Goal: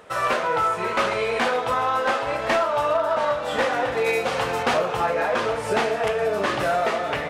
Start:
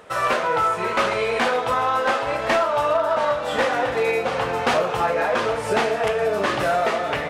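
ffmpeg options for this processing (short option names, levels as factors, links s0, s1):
-filter_complex "[0:a]asettb=1/sr,asplit=3[s0][s1][s2];[s0]atrim=end=4.064[s3];[s1]atrim=start=4.06:end=4.63,asetpts=PTS-STARTPTS,afade=t=in:d=0.004:c=qsin,afade=t=out:st=0.566:d=0.004:c=qsin,highshelf=f=3400:g=8[s4];[s2]atrim=start=4.626[s5];[s3][s4]acrossfade=d=0.004:c1=hsin:c2=qsin[s6];[s6][s5]acrossfade=d=0.004:c1=qsin:c2=hsin,volume=0.841"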